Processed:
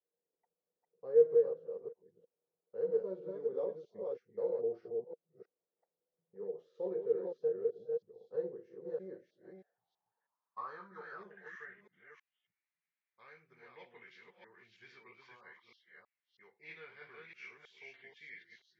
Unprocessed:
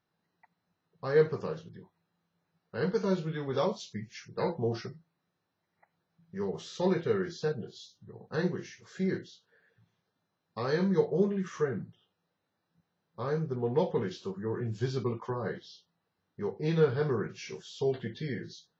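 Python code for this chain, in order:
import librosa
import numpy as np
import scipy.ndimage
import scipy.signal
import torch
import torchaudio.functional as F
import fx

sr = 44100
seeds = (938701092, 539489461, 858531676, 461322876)

y = fx.reverse_delay(x, sr, ms=321, wet_db=-2.5)
y = fx.filter_sweep_bandpass(y, sr, from_hz=480.0, to_hz=2200.0, start_s=8.9, end_s=12.03, q=7.6)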